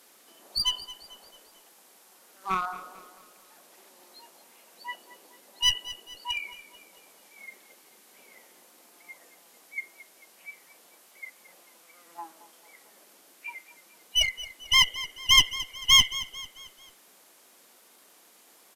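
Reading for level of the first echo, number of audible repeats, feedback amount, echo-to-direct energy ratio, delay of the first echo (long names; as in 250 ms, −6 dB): −16.0 dB, 3, 45%, −15.0 dB, 222 ms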